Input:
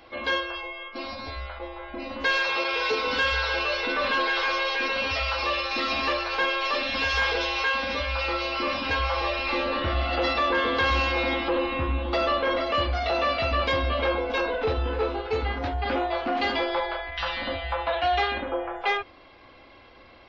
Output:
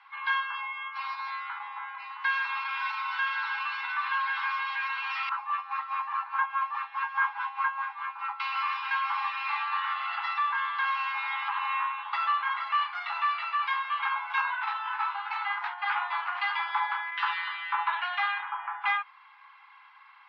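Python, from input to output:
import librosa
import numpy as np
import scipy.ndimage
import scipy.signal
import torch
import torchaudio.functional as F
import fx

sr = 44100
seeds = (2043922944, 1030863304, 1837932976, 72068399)

y = fx.wah_lfo(x, sr, hz=4.8, low_hz=460.0, high_hz=1300.0, q=2.6, at=(5.29, 8.4))
y = fx.peak_eq(y, sr, hz=700.0, db=-10.5, octaves=0.77, at=(17.33, 17.74))
y = scipy.signal.sosfilt(scipy.signal.butter(16, 850.0, 'highpass', fs=sr, output='sos'), y)
y = fx.rider(y, sr, range_db=4, speed_s=0.5)
y = scipy.signal.sosfilt(scipy.signal.butter(2, 1900.0, 'lowpass', fs=sr, output='sos'), y)
y = F.gain(torch.from_numpy(y), 2.0).numpy()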